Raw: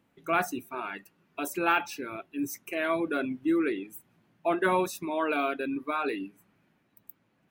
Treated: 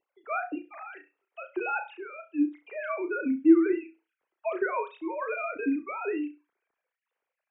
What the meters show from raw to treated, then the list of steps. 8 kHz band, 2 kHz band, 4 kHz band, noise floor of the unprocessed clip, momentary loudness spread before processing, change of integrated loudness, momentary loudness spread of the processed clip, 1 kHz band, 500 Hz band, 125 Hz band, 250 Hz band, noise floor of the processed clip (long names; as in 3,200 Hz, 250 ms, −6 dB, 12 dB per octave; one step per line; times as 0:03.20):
below −35 dB, −3.5 dB, below −15 dB, −71 dBFS, 12 LU, +1.0 dB, 18 LU, −4.5 dB, −0.5 dB, below −20 dB, +4.0 dB, below −85 dBFS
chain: three sine waves on the formant tracks
flutter between parallel walls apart 5.8 metres, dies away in 0.25 s